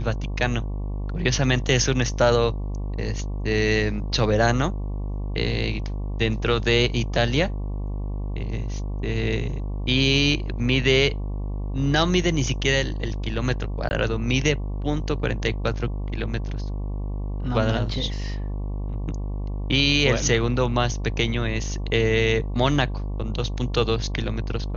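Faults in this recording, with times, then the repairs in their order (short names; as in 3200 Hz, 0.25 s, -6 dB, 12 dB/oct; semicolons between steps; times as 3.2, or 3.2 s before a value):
buzz 50 Hz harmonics 23 -28 dBFS
13.89–13.91 gap 19 ms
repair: de-hum 50 Hz, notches 23; interpolate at 13.89, 19 ms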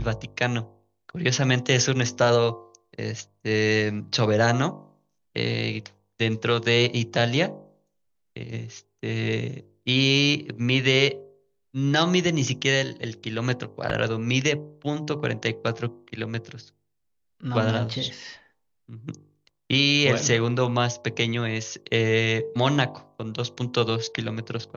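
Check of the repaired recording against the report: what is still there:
none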